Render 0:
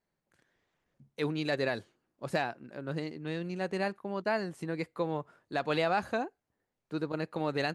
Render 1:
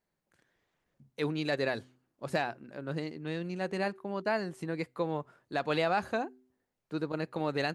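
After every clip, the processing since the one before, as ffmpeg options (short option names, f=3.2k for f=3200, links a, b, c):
-af "bandreject=f=127.6:t=h:w=4,bandreject=f=255.2:t=h:w=4,bandreject=f=382.8:t=h:w=4"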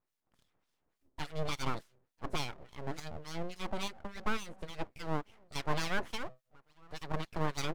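-filter_complex "[0:a]asplit=2[a][b];[b]adelay=991.3,volume=-27dB,highshelf=f=4k:g=-22.3[c];[a][c]amix=inputs=2:normalize=0,acrossover=split=1100[d][e];[d]aeval=exprs='val(0)*(1-1/2+1/2*cos(2*PI*3.5*n/s))':c=same[f];[e]aeval=exprs='val(0)*(1-1/2-1/2*cos(2*PI*3.5*n/s))':c=same[g];[f][g]amix=inputs=2:normalize=0,aeval=exprs='abs(val(0))':c=same,volume=3.5dB"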